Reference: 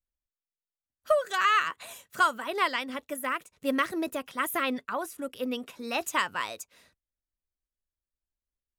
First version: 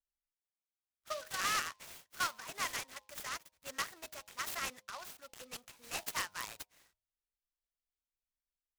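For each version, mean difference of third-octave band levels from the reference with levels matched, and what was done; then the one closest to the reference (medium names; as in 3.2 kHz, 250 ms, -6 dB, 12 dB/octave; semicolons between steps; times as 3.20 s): 10.0 dB: amplifier tone stack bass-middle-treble 10-0-10; de-hum 104.2 Hz, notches 10; delay time shaken by noise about 3.6 kHz, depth 0.067 ms; trim -4 dB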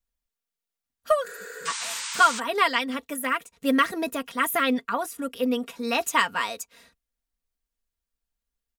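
3.0 dB: spectral replace 1.31–1.66 s, 250–10000 Hz before; comb 4.3 ms, depth 61%; painted sound noise, 1.65–2.40 s, 840–9100 Hz -37 dBFS; trim +4 dB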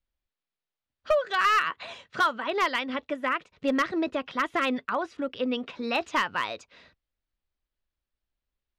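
4.5 dB: low-pass 4.4 kHz 24 dB/octave; in parallel at +1 dB: compression 6:1, threshold -35 dBFS, peak gain reduction 16 dB; on the sum: overload inside the chain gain 17 dB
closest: second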